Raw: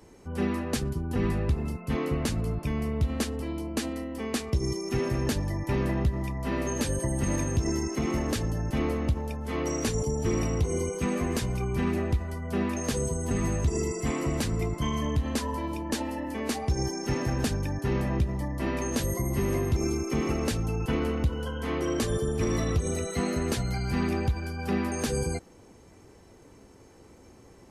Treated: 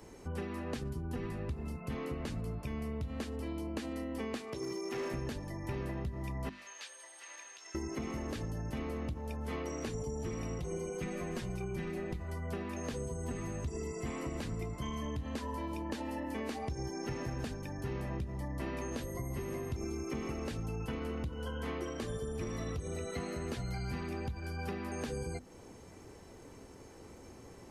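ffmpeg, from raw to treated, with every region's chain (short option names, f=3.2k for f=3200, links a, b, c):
-filter_complex "[0:a]asettb=1/sr,asplit=3[a][b][c];[a]atrim=end=4.384[d];[b]atrim=start=4.38:end=5.14,asetpts=PTS-STARTPTS,afade=t=in:d=0.004:c=qsin,afade=t=out:st=0.756:d=0.004:c=qsin,highpass=260,lowshelf=f=390:g=-2.5,asoftclip=type=hard:threshold=-29.5dB[e];[c]atrim=start=5.136[f];[d][e]acrossfade=d=0.004:c1=hsin:c2=qsin[g];[g][f]acrossfade=d=0.004:c1=qsin:c2=hsin,asettb=1/sr,asplit=3[h][i][j];[h]atrim=end=6.494[k];[i]atrim=start=6.49:end=7.75,asetpts=PTS-STARTPTS,afade=t=in:d=0.004:c=qsin,afade=t=out:st=1.256:d=0.004:c=qsin,aderivative,acrusher=bits=7:mix=0:aa=0.5,highpass=710,lowpass=4.1k[l];[j]atrim=start=7.746[m];[k][l]acrossfade=d=0.004:c1=hsin:c2=qsin[n];[n][m]acrossfade=d=0.004:c1=qsin:c2=hsin,asettb=1/sr,asplit=3[o][p][q];[o]atrim=end=10.584[r];[p]atrim=start=10.58:end=12.2,asetpts=PTS-STARTPTS,afade=t=in:d=0.004:c=qsin,afade=t=out:st=1.616:d=0.004:c=qsin,tremolo=f=240:d=0.333,aecho=1:1:5.5:0.69,atrim=end_sample=71442[s];[q]atrim=start=12.196[t];[r][s]acrossfade=d=0.004:c1=hsin:c2=qsin[u];[u][t]acrossfade=d=0.004:c1=qsin:c2=hsin,acompressor=threshold=-36dB:ratio=6,bandreject=f=50:t=h:w=6,bandreject=f=100:t=h:w=6,bandreject=f=150:t=h:w=6,bandreject=f=200:t=h:w=6,bandreject=f=250:t=h:w=6,bandreject=f=300:t=h:w=6,bandreject=f=350:t=h:w=6,acrossover=split=4100[v][w];[w]acompressor=threshold=-53dB:ratio=4:attack=1:release=60[x];[v][x]amix=inputs=2:normalize=0,volume=1dB"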